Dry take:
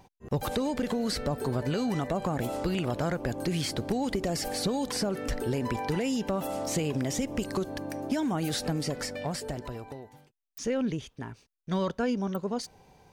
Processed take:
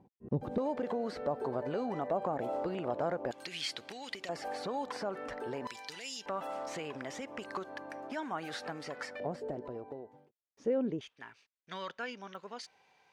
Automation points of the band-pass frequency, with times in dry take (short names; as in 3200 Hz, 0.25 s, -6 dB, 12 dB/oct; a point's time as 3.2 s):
band-pass, Q 1.1
240 Hz
from 0.58 s 680 Hz
from 3.31 s 2900 Hz
from 4.29 s 1000 Hz
from 5.67 s 4700 Hz
from 6.26 s 1300 Hz
from 9.2 s 450 Hz
from 11.01 s 2200 Hz